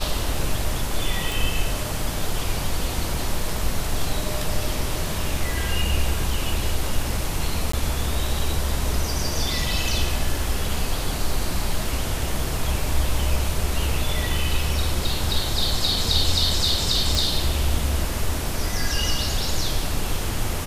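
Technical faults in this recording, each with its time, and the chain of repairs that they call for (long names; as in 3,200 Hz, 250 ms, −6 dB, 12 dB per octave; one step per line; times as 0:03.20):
0:01.32: click
0:07.72–0:07.73: drop-out 14 ms
0:17.15: click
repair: click removal
repair the gap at 0:07.72, 14 ms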